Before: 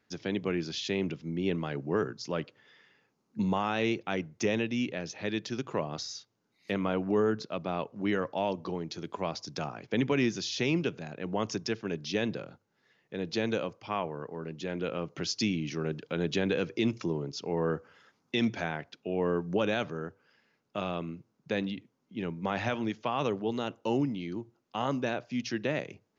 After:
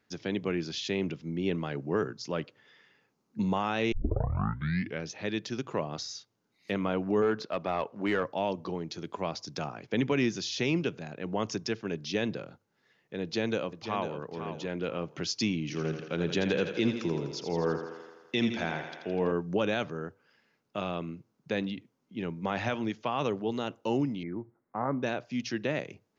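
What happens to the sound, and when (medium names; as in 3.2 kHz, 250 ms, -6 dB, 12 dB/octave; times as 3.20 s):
3.92 s: tape start 1.17 s
7.22–8.23 s: overdrive pedal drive 13 dB, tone 2.1 kHz, clips at -17.5 dBFS
13.22–14.17 s: echo throw 500 ms, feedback 25%, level -9 dB
15.61–19.32 s: thinning echo 83 ms, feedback 69%, high-pass 190 Hz, level -8 dB
24.23–25.03 s: steep low-pass 2.2 kHz 96 dB/octave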